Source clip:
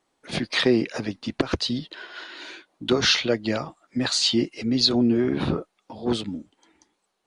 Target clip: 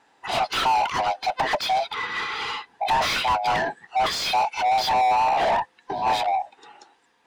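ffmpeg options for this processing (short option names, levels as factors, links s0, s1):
-filter_complex "[0:a]afftfilt=real='real(if(lt(b,1008),b+24*(1-2*mod(floor(b/24),2)),b),0)':imag='imag(if(lt(b,1008),b+24*(1-2*mod(floor(b/24),2)),b),0)':win_size=2048:overlap=0.75,asplit=2[s0][s1];[s1]highpass=f=720:p=1,volume=31.6,asoftclip=type=tanh:threshold=0.501[s2];[s0][s2]amix=inputs=2:normalize=0,lowpass=f=1700:p=1,volume=0.501,volume=0.473"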